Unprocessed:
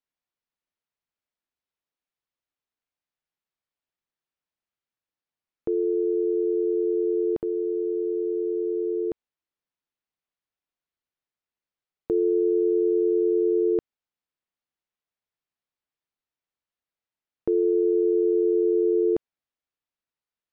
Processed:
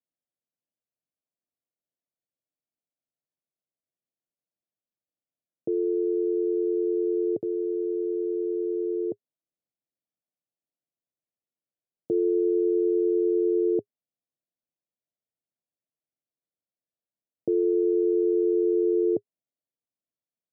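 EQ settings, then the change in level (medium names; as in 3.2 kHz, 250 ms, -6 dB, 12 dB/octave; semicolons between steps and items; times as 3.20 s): elliptic band-pass 110–670 Hz; band-stop 410 Hz, Q 12; 0.0 dB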